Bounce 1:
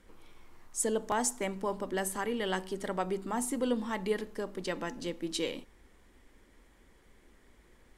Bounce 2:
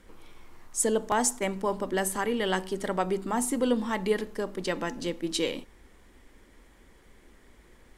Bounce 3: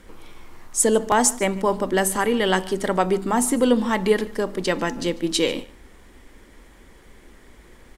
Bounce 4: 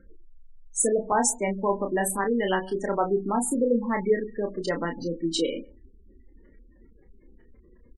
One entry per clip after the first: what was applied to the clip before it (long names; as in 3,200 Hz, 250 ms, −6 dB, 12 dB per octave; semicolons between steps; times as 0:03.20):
level that may rise only so fast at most 530 dB per second; level +5 dB
single-tap delay 146 ms −21.5 dB; level +7.5 dB
gate on every frequency bin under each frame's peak −15 dB strong; double-tracking delay 30 ms −5.5 dB; level −5 dB